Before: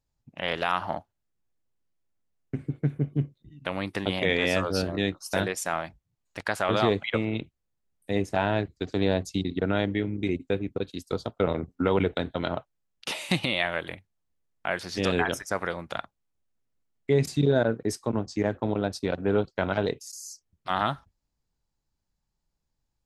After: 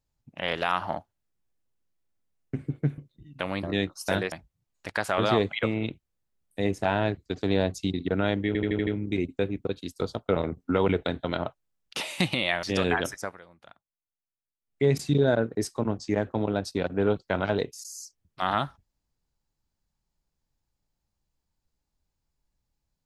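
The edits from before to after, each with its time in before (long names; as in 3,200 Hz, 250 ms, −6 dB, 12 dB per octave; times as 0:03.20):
0:02.98–0:03.24: remove
0:03.89–0:04.88: remove
0:05.57–0:05.83: remove
0:09.98: stutter 0.08 s, 6 plays
0:13.74–0:14.91: remove
0:15.42–0:17.12: duck −19 dB, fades 0.23 s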